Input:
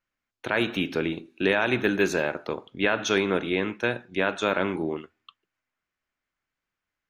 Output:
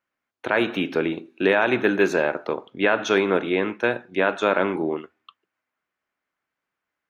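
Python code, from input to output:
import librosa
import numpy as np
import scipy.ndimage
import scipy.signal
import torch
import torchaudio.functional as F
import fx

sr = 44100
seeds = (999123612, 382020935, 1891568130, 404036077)

y = fx.highpass(x, sr, hz=370.0, slope=6)
y = fx.high_shelf(y, sr, hz=2400.0, db=-12.0)
y = y * 10.0 ** (7.5 / 20.0)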